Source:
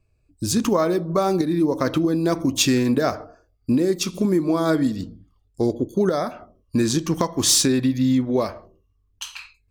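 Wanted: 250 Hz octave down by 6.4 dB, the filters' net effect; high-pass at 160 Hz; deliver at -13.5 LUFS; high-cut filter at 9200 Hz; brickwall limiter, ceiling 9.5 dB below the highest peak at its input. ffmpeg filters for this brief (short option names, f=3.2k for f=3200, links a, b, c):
-af "highpass=160,lowpass=9.2k,equalizer=f=250:t=o:g=-7.5,volume=13dB,alimiter=limit=-1dB:level=0:latency=1"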